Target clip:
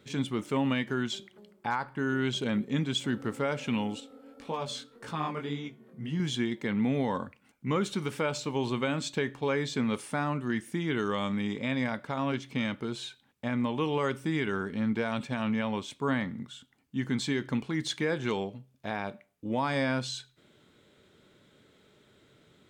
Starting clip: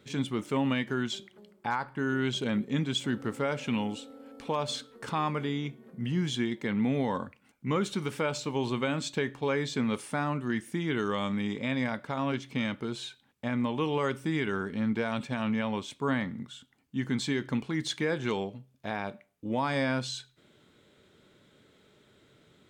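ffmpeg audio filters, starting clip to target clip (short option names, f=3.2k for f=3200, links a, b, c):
-filter_complex "[0:a]asettb=1/sr,asplit=3[a][b][c];[a]atrim=end=4.004[d];[b]atrim=start=4:end=6.2,asetpts=PTS-STARTPTS,afade=t=in:d=0.004:c=qsin,afade=t=out:st=2.196:d=0.004:c=qsin,flanger=delay=17.5:depth=7.3:speed=1.8[e];[c]atrim=start=6.196[f];[d][e]acrossfade=d=0.004:c1=hsin:c2=qsin[g];[g][f]acrossfade=d=0.004:c1=qsin:c2=hsin"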